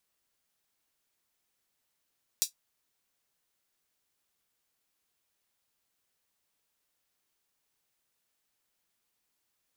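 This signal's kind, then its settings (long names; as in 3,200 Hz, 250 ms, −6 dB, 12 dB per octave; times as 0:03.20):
closed synth hi-hat, high-pass 4,900 Hz, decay 0.12 s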